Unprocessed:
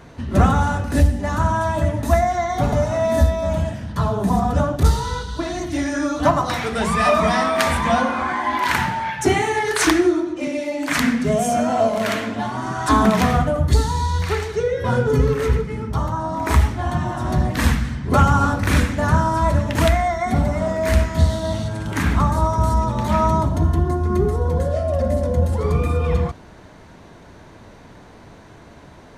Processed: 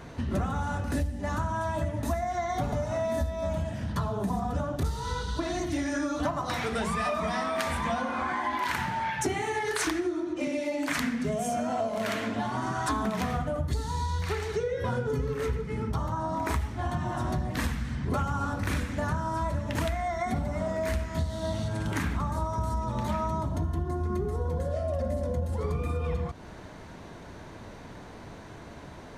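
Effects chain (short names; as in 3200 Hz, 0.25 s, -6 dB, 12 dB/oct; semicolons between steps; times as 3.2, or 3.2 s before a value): compressor, threshold -26 dBFS, peak gain reduction 16 dB; gain -1 dB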